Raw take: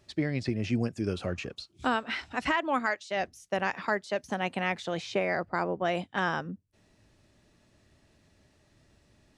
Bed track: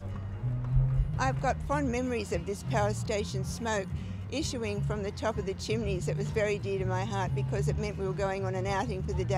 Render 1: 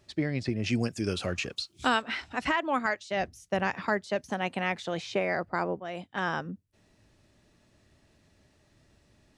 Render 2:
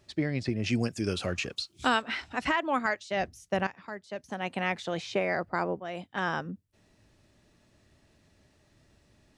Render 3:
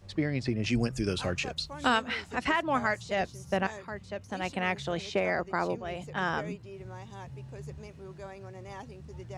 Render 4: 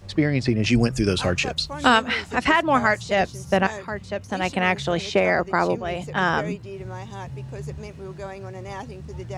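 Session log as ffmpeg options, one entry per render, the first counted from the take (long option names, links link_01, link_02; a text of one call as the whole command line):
ffmpeg -i in.wav -filter_complex "[0:a]asettb=1/sr,asplit=3[link_01][link_02][link_03];[link_01]atrim=end=0.664[link_04];[link_02]atrim=start=0.66:end=2.02,asetpts=PTS-STARTPTS,afade=type=in:duration=0.004:curve=qsin,afade=type=out:start_time=1.356:duration=0.004:curve=qsin,highshelf=frequency=2000:gain=10[link_05];[link_03]atrim=start=2.016[link_06];[link_04][link_05]acrossfade=duration=0.004:curve1=hsin:curve2=qsin[link_07];[link_07][link_06]acrossfade=duration=0.004:curve1=qsin:curve2=hsin,asettb=1/sr,asplit=3[link_08][link_09][link_10];[link_08]atrim=end=2.854[link_11];[link_09]atrim=start=2.85:end=4.22,asetpts=PTS-STARTPTS,afade=type=in:duration=0.004:curve=qsin,afade=type=out:start_time=1.366:duration=0.004:curve=qsin,equalizer=frequency=68:width=0.43:gain=9.5[link_12];[link_10]atrim=start=4.216[link_13];[link_11][link_12]acrossfade=duration=0.004:curve1=hsin:curve2=qsin[link_14];[link_14][link_13]acrossfade=duration=0.004:curve1=qsin:curve2=hsin,asplit=2[link_15][link_16];[link_15]atrim=end=5.8,asetpts=PTS-STARTPTS,afade=type=out:start_time=5.796:duration=0.004:curve=hsin:silence=0.237137[link_17];[link_16]atrim=start=5.8,asetpts=PTS-STARTPTS,afade=type=in:duration=0.57:silence=0.237137[link_18];[link_17][link_18]concat=n=2:v=0:a=1" out.wav
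ffmpeg -i in.wav -filter_complex "[0:a]asplit=2[link_01][link_02];[link_01]atrim=end=3.67,asetpts=PTS-STARTPTS,afade=type=out:start_time=3.666:duration=0.004:curve=hsin:silence=0.188365[link_03];[link_02]atrim=start=3.67,asetpts=PTS-STARTPTS,afade=type=in:duration=0.94:curve=qua:silence=0.188365[link_04];[link_03][link_04]concat=n=2:v=0:a=1" out.wav
ffmpeg -i in.wav -i bed.wav -filter_complex "[1:a]volume=-13dB[link_01];[0:a][link_01]amix=inputs=2:normalize=0" out.wav
ffmpeg -i in.wav -af "volume=9dB" out.wav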